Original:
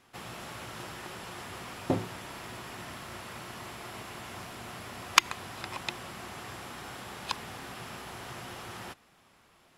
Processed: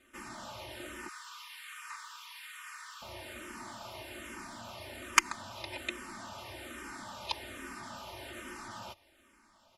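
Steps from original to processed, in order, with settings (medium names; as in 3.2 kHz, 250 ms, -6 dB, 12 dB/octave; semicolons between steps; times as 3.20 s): 1.08–3.02 s: steep high-pass 990 Hz 96 dB/octave; spectral gate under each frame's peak -30 dB strong; comb 3.3 ms, depth 80%; barber-pole phaser -1.2 Hz; trim -1.5 dB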